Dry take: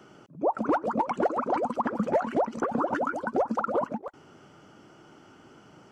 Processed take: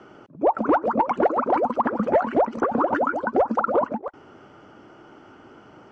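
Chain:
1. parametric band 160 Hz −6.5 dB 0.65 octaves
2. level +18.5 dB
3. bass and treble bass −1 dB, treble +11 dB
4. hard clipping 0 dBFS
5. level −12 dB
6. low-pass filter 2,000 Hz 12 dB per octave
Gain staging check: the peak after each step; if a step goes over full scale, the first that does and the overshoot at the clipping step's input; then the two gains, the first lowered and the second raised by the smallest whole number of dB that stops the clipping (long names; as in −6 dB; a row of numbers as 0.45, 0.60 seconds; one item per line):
−15.5, +3.0, +3.5, 0.0, −12.0, −11.5 dBFS
step 2, 3.5 dB
step 2 +14.5 dB, step 5 −8 dB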